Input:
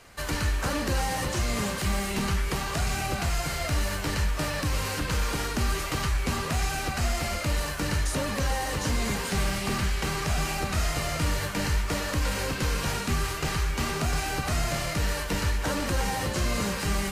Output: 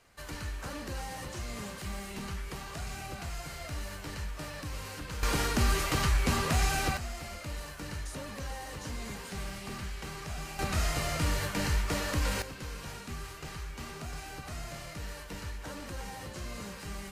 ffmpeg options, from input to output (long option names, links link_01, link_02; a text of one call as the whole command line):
ffmpeg -i in.wav -af "asetnsamples=nb_out_samples=441:pad=0,asendcmd='5.23 volume volume 0dB;6.97 volume volume -12dB;10.59 volume volume -3dB;12.42 volume volume -13.5dB',volume=-11.5dB" out.wav